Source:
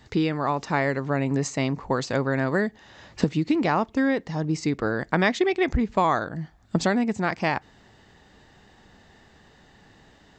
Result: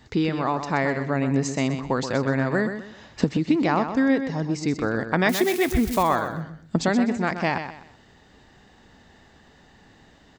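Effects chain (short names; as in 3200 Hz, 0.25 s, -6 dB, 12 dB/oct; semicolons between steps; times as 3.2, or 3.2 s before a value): 5.29–6.03 switching spikes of -23 dBFS; bell 250 Hz +3.5 dB 0.24 oct; feedback echo 0.126 s, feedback 30%, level -9 dB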